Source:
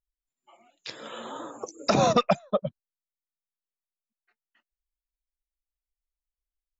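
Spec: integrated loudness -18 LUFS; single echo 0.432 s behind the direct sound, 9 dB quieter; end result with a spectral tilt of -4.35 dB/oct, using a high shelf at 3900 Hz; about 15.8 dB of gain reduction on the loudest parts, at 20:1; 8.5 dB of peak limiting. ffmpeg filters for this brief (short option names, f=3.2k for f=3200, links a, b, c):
-af "highshelf=f=3.9k:g=-3.5,acompressor=threshold=-32dB:ratio=20,alimiter=level_in=4dB:limit=-24dB:level=0:latency=1,volume=-4dB,aecho=1:1:432:0.355,volume=23dB"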